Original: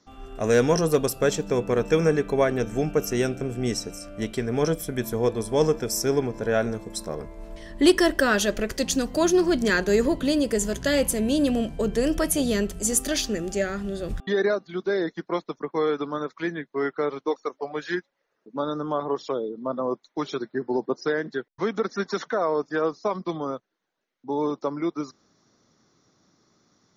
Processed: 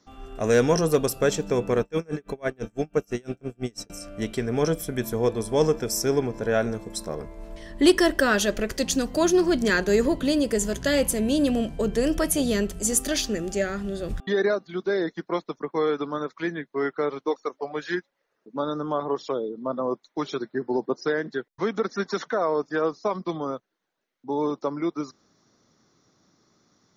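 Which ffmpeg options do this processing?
-filter_complex "[0:a]asettb=1/sr,asplit=3[s0][s1][s2];[s0]atrim=end=1.814[s3];[s1]atrim=start=1.81:end=3.9,asetpts=PTS-STARTPTS,afade=t=in:d=0.004:c=qsin,afade=t=out:st=2.086:d=0.004:c=qsin,aeval=exprs='val(0)*pow(10,-34*(0.5-0.5*cos(2*PI*6*n/s))/20)':c=same[s4];[s2]atrim=start=3.896[s5];[s3][s4]acrossfade=d=0.004:c1=hsin:c2=qsin[s6];[s6][s5]acrossfade=d=0.004:c1=qsin:c2=hsin"

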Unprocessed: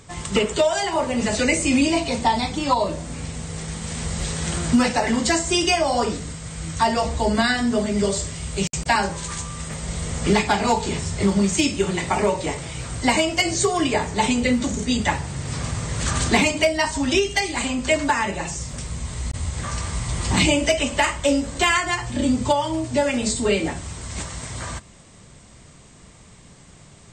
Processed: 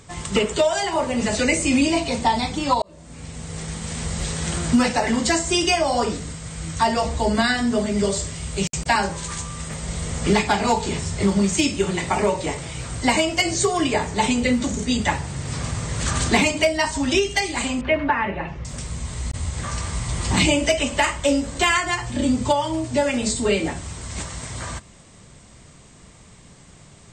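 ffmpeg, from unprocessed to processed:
-filter_complex "[0:a]asettb=1/sr,asplit=3[s0][s1][s2];[s0]atrim=end=17.814[s3];[s1]atrim=start=17.81:end=18.65,asetpts=PTS-STARTPTS,afade=t=in:d=0.004:c=qsin,afade=t=out:st=0.836:d=0.004:c=qsin,lowpass=f=2700:w=0.5412,lowpass=f=2700:w=1.3066[s4];[s2]atrim=start=18.646[s5];[s3][s4]acrossfade=d=0.004:c1=hsin:c2=qsin[s6];[s6][s5]acrossfade=d=0.004:c1=qsin:c2=hsin,asplit=2[s7][s8];[s7]atrim=end=2.82,asetpts=PTS-STARTPTS,afade=t=out:st=2.816:d=0.004:c=hsin[s9];[s8]atrim=start=2.82,asetpts=PTS-STARTPTS,afade=t=in:d=0.79[s10];[s9][s10]concat=n=2:v=0:a=1"

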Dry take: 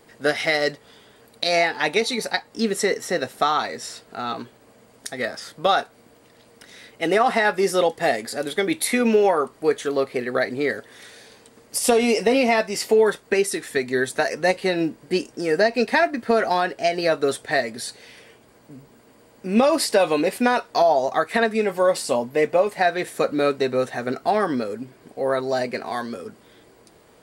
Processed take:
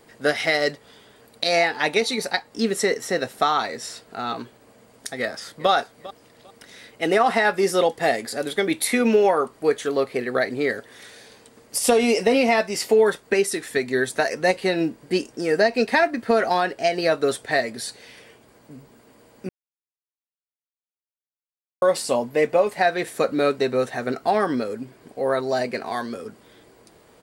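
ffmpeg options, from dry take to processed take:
-filter_complex "[0:a]asplit=2[s0][s1];[s1]afade=t=in:st=5.19:d=0.01,afade=t=out:st=5.7:d=0.01,aecho=0:1:400|800:0.133352|0.033338[s2];[s0][s2]amix=inputs=2:normalize=0,asplit=3[s3][s4][s5];[s3]atrim=end=19.49,asetpts=PTS-STARTPTS,afade=t=out:st=19.486:d=0.004:c=hsin[s6];[s4]atrim=start=19.49:end=21.82,asetpts=PTS-STARTPTS,volume=0[s7];[s5]atrim=start=21.82,asetpts=PTS-STARTPTS,afade=t=in:d=0.004:c=hsin[s8];[s6][s7][s8]concat=n=3:v=0:a=1"

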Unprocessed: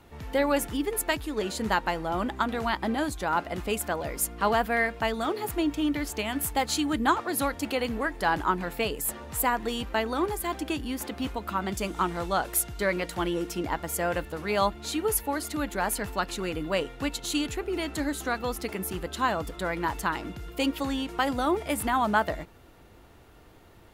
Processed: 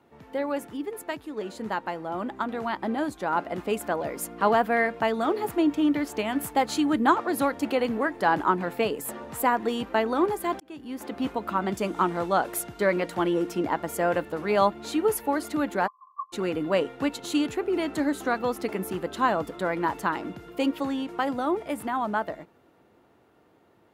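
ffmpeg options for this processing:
-filter_complex "[0:a]asplit=3[s0][s1][s2];[s0]afade=t=out:st=15.86:d=0.02[s3];[s1]asuperpass=centerf=1100:order=12:qfactor=7.5,afade=t=in:st=15.86:d=0.02,afade=t=out:st=16.32:d=0.02[s4];[s2]afade=t=in:st=16.32:d=0.02[s5];[s3][s4][s5]amix=inputs=3:normalize=0,asplit=2[s6][s7];[s6]atrim=end=10.6,asetpts=PTS-STARTPTS,afade=t=out:st=10.596:d=0.004:c=hsin[s8];[s7]atrim=start=10.6,asetpts=PTS-STARTPTS,afade=t=in:d=0.68[s9];[s8][s9]concat=n=2:v=0:a=1,highpass=180,highshelf=f=2100:g=-11,dynaudnorm=f=200:g=31:m=2.66,volume=0.708"

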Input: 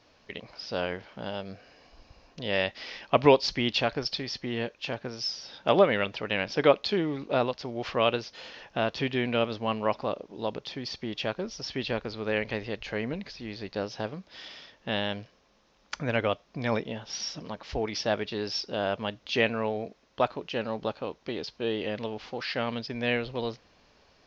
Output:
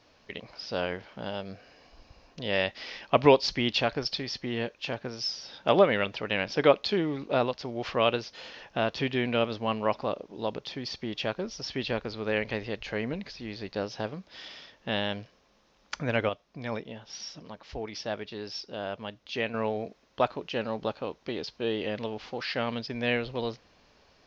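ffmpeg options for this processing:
-filter_complex "[0:a]asplit=3[s0][s1][s2];[s0]atrim=end=16.292[s3];[s1]atrim=start=16.288:end=19.542,asetpts=PTS-STARTPTS,volume=0.501[s4];[s2]atrim=start=19.538[s5];[s3][s4]acrossfade=d=0.004:c1=hsin:c2=hsin[s6];[s6][s5]acrossfade=d=0.004:c1=hsin:c2=hsin"

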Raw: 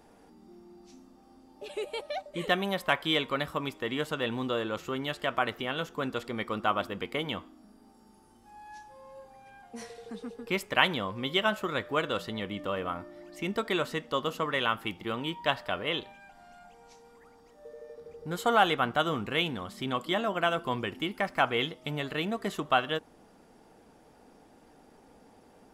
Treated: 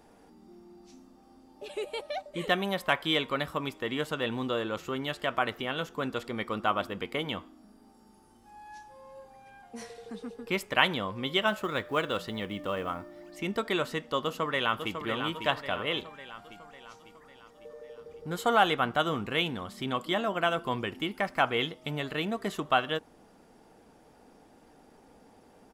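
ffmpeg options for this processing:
-filter_complex "[0:a]asettb=1/sr,asplit=3[s0][s1][s2];[s0]atrim=end=11.474[s3];[s1]atrim=start=11.47:end=13.33,asetpts=PTS-STARTPTS,afade=t=in:d=0.004:c=qsin,afade=t=out:st=1.856:d=0.004:c=qsin,acrusher=bits=8:mode=log:mix=0:aa=0.000001[s4];[s2]atrim=start=13.326[s5];[s3][s4]acrossfade=d=0.004:c1=hsin:c2=qsin[s6];[s6][s5]acrossfade=d=0.004:c1=qsin:c2=hsin,asplit=2[s7][s8];[s8]afade=t=in:st=14.18:d=0.01,afade=t=out:st=14.99:d=0.01,aecho=0:1:550|1100|1650|2200|2750|3300|3850:0.446684|0.245676|0.135122|0.074317|0.0408743|0.0224809|0.0123645[s9];[s7][s9]amix=inputs=2:normalize=0"

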